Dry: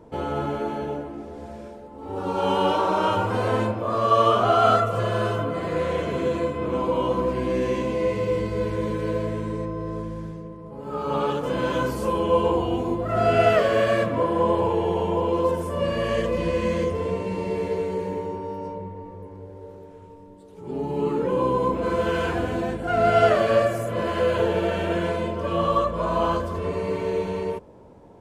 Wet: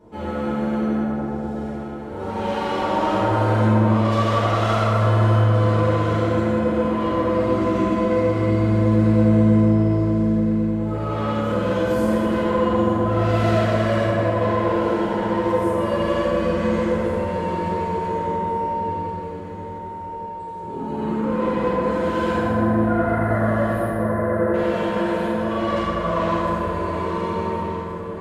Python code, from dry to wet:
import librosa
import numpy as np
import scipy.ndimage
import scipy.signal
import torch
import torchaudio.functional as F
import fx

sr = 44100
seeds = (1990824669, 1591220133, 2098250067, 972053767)

y = 10.0 ** (-23.0 / 20.0) * np.tanh(x / 10.0 ** (-23.0 / 20.0))
y = fx.brickwall_bandstop(y, sr, low_hz=2100.0, high_hz=8800.0, at=(22.39, 24.54))
y = fx.echo_alternate(y, sr, ms=711, hz=1000.0, feedback_pct=58, wet_db=-6)
y = fx.rev_fdn(y, sr, rt60_s=3.3, lf_ratio=1.0, hf_ratio=0.45, size_ms=28.0, drr_db=-10.0)
y = y * 10.0 ** (-6.5 / 20.0)